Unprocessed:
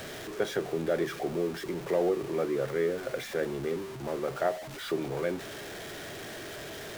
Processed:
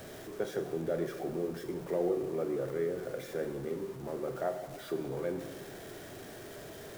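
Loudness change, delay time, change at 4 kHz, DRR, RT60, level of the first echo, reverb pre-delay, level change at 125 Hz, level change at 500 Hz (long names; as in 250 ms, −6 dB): −4.0 dB, no echo audible, −10.0 dB, 7.0 dB, 1.4 s, no echo audible, 17 ms, −3.0 dB, −4.0 dB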